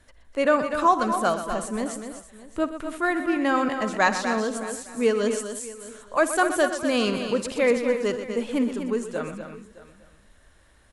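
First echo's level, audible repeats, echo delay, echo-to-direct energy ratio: −17.5 dB, 8, 58 ms, −5.5 dB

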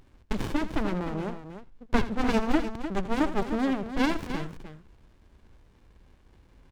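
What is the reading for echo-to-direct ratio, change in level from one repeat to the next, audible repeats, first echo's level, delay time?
−8.5 dB, repeats not evenly spaced, 2, −14.5 dB, 82 ms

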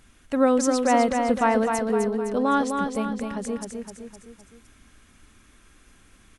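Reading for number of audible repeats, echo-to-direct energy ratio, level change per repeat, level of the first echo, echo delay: 4, −4.0 dB, −6.0 dB, −5.0 dB, 256 ms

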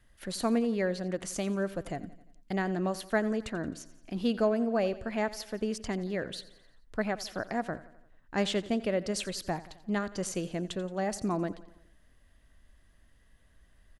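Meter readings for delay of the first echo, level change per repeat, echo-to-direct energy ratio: 87 ms, −5.0 dB, −16.0 dB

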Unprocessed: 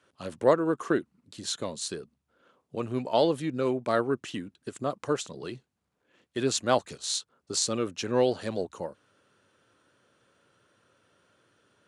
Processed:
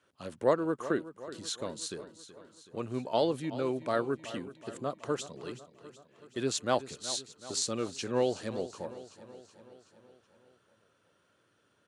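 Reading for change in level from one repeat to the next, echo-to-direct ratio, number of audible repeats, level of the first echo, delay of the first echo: −4.5 dB, −13.0 dB, 5, −15.0 dB, 375 ms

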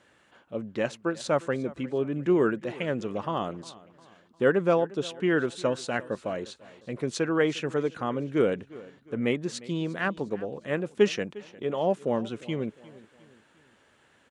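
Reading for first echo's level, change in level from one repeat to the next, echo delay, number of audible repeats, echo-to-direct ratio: −20.0 dB, −7.0 dB, 354 ms, 3, −19.0 dB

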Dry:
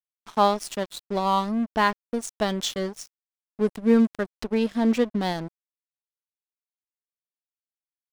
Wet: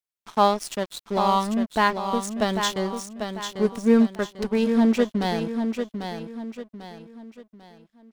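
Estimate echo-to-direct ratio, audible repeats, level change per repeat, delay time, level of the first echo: −6.5 dB, 4, −8.5 dB, 795 ms, −7.0 dB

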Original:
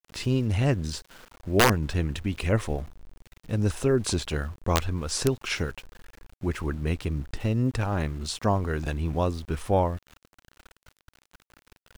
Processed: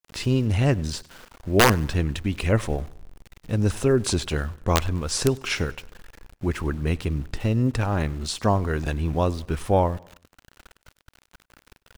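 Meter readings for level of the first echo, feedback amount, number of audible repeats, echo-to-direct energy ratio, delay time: −23.5 dB, 45%, 2, −22.5 dB, 99 ms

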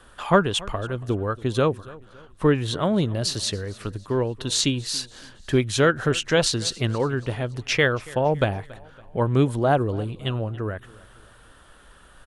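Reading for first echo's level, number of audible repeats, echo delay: −21.5 dB, 2, 280 ms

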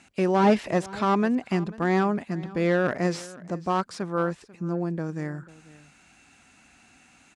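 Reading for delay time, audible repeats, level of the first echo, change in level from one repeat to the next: 491 ms, 1, −20.0 dB, repeats not evenly spaced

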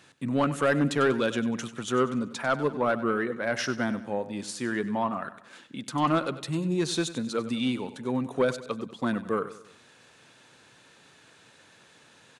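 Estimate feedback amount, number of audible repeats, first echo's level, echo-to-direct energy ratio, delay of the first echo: 45%, 3, −14.5 dB, −13.5 dB, 96 ms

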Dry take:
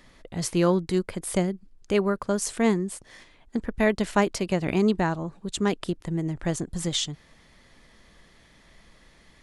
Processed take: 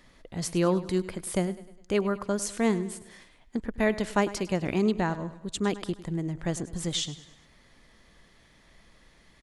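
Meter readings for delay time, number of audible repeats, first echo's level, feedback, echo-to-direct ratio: 102 ms, 3, −16.0 dB, 47%, −15.0 dB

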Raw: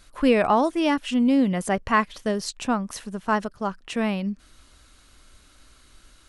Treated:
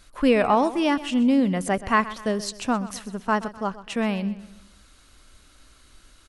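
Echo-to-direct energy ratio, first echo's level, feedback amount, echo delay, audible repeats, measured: −15.0 dB, −16.0 dB, 43%, 127 ms, 3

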